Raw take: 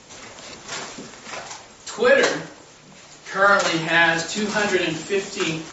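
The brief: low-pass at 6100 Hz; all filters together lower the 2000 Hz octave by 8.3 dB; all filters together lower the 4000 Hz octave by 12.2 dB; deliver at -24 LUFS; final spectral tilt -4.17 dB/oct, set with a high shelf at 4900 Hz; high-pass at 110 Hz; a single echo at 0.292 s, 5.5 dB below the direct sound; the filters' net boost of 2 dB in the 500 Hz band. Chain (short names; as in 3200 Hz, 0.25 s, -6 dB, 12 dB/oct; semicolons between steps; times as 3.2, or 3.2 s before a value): HPF 110 Hz; LPF 6100 Hz; bell 500 Hz +3 dB; bell 2000 Hz -8.5 dB; bell 4000 Hz -8.5 dB; high shelf 4900 Hz -8.5 dB; echo 0.292 s -5.5 dB; gain -3.5 dB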